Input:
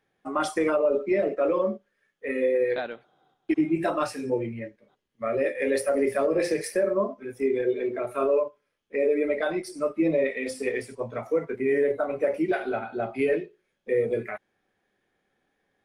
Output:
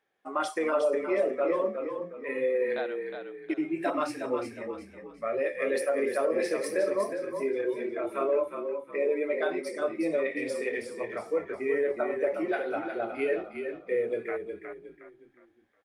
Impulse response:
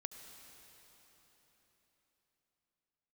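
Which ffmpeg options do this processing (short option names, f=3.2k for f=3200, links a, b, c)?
-filter_complex "[0:a]bass=f=250:g=-14,treble=f=4k:g=-3,asplit=5[a][b][c][d][e];[b]adelay=362,afreqshift=-33,volume=-7dB[f];[c]adelay=724,afreqshift=-66,volume=-16.1dB[g];[d]adelay=1086,afreqshift=-99,volume=-25.2dB[h];[e]adelay=1448,afreqshift=-132,volume=-34.4dB[i];[a][f][g][h][i]amix=inputs=5:normalize=0,volume=-2.5dB"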